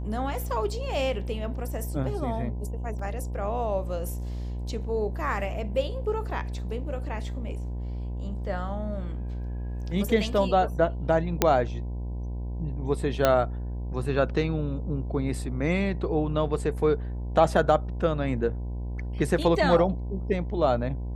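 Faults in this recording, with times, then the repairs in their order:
mains buzz 60 Hz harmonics 17 −32 dBFS
0:02.99: drop-out 3.8 ms
0:11.42: click −4 dBFS
0:13.25: click −7 dBFS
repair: click removal
hum removal 60 Hz, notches 17
repair the gap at 0:02.99, 3.8 ms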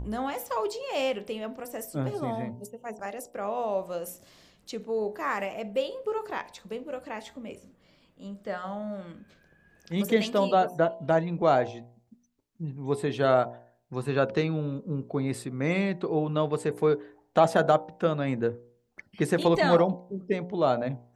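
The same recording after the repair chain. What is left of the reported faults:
none of them is left

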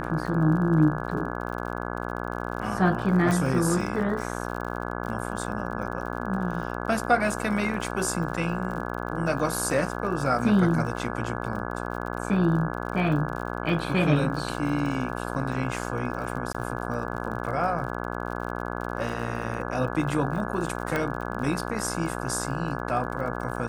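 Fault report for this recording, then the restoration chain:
mains buzz 60 Hz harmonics 28 −32 dBFS
surface crackle 58 per second −35 dBFS
0:03.31: click
0:16.53–0:16.55: drop-out 15 ms
0:20.96: click −13 dBFS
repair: click removal
hum removal 60 Hz, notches 28
repair the gap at 0:16.53, 15 ms

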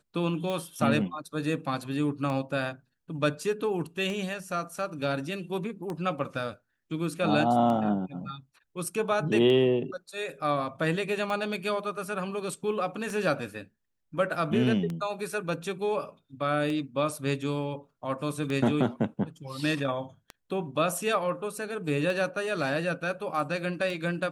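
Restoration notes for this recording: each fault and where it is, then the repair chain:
scratch tick 33 1/3 rpm −21 dBFS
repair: click removal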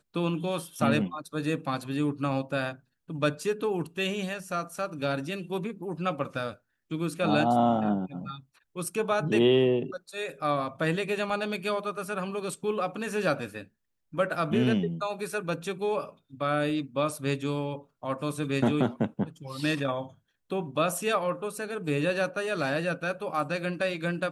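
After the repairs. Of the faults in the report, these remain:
none of them is left

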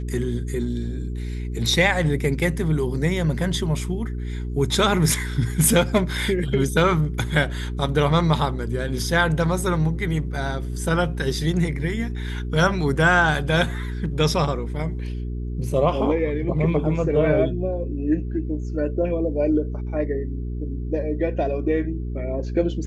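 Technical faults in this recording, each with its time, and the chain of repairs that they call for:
mains hum 60 Hz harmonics 7 −28 dBFS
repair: hum removal 60 Hz, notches 7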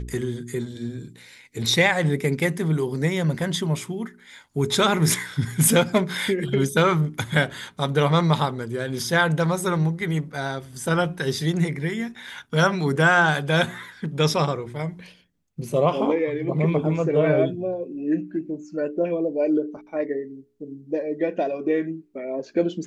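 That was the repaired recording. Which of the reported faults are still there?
none of them is left

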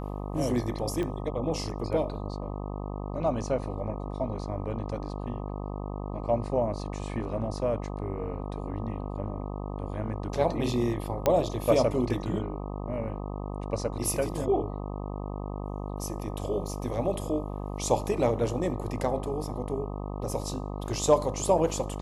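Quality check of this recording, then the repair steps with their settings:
mains buzz 50 Hz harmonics 25 −35 dBFS
0:01.03: click −21 dBFS
0:11.26: click −10 dBFS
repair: click removal
hum removal 50 Hz, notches 25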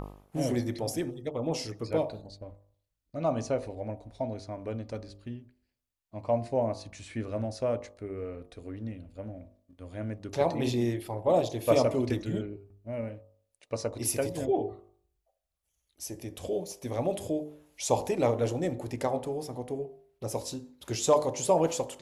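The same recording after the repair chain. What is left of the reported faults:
0:01.03: click

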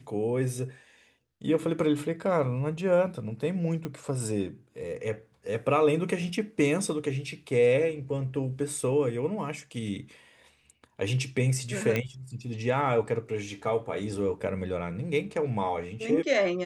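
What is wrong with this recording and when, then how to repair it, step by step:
0:03.85: click −21 dBFS
0:11.96: click −14 dBFS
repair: click removal

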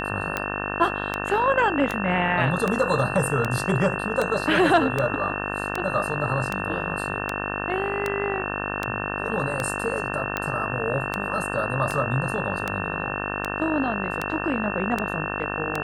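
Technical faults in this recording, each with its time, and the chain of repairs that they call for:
mains buzz 50 Hz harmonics 36 −30 dBFS
scratch tick 78 rpm −10 dBFS
whistle 2,700 Hz −32 dBFS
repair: click removal
notch filter 2,700 Hz, Q 30
hum removal 50 Hz, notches 36

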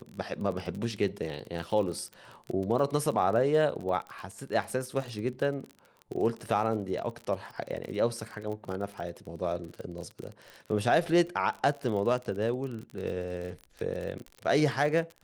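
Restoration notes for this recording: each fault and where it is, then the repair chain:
surface crackle 33 per second −35 dBFS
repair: click removal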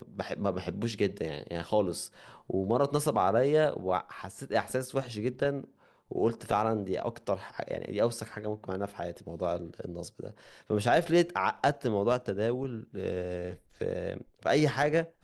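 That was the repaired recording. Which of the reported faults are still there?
none of them is left

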